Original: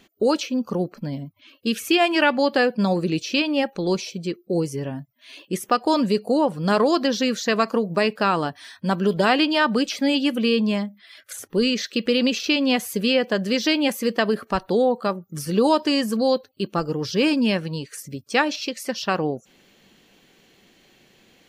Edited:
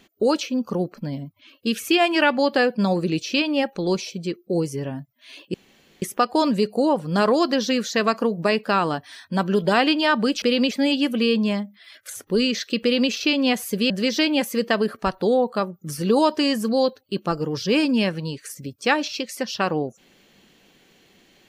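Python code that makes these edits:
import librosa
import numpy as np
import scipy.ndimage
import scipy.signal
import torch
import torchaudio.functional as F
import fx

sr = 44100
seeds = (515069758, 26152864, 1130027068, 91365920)

y = fx.edit(x, sr, fx.insert_room_tone(at_s=5.54, length_s=0.48),
    fx.duplicate(start_s=12.05, length_s=0.29, to_s=9.94),
    fx.cut(start_s=13.13, length_s=0.25), tone=tone)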